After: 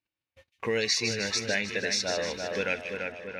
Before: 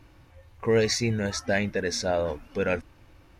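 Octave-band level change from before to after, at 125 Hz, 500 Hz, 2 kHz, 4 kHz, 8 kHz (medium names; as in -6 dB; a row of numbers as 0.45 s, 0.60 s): -10.0 dB, -5.0 dB, +1.5 dB, +4.0 dB, +1.5 dB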